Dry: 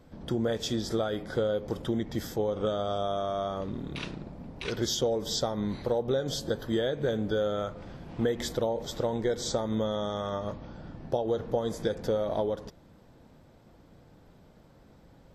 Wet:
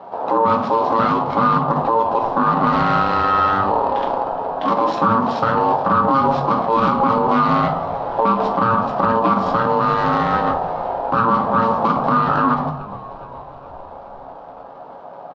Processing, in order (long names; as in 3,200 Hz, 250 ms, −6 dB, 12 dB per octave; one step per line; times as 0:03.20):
running median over 25 samples
ring modulation 680 Hz
loudspeaker in its box 170–4,600 Hz, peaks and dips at 260 Hz +3 dB, 380 Hz −3 dB, 700 Hz +6 dB, 1,000 Hz +4 dB, 2,100 Hz −6 dB
echo with shifted repeats 418 ms, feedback 63%, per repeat −60 Hz, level −22.5 dB
convolution reverb RT60 0.55 s, pre-delay 7 ms, DRR 3.5 dB
boost into a limiter +23.5 dB
highs frequency-modulated by the lows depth 0.17 ms
level −6 dB